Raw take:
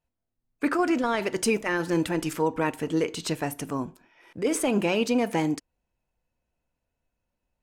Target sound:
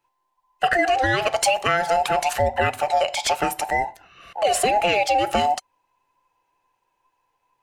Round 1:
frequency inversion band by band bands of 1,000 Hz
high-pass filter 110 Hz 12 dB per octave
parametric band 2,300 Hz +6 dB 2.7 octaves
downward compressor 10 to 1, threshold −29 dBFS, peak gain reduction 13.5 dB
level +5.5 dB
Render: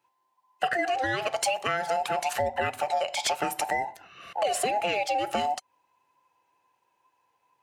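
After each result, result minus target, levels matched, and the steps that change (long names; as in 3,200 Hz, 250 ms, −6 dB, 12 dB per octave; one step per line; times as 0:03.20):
downward compressor: peak gain reduction +7.5 dB; 125 Hz band −3.5 dB
change: downward compressor 10 to 1, threshold −20.5 dBFS, peak gain reduction 5.5 dB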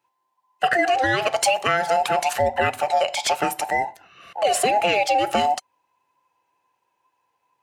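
125 Hz band −3.0 dB
remove: high-pass filter 110 Hz 12 dB per octave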